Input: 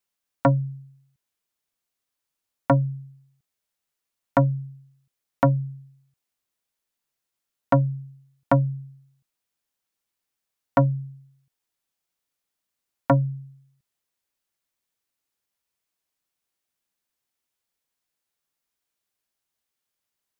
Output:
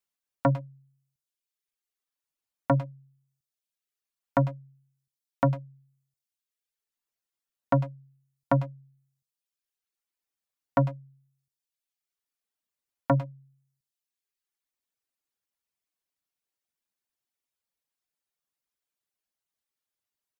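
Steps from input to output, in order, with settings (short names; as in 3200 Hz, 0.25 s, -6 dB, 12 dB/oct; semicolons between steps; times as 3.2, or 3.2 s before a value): reverb removal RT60 1.1 s; speakerphone echo 0.1 s, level -12 dB; gain -4.5 dB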